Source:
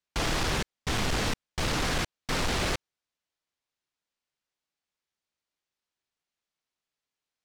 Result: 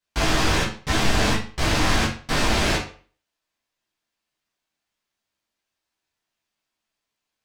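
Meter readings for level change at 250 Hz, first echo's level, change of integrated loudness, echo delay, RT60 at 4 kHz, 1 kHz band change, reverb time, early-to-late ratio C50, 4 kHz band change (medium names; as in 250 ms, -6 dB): +8.5 dB, no echo, +7.5 dB, no echo, 0.35 s, +8.0 dB, 0.45 s, 6.5 dB, +7.0 dB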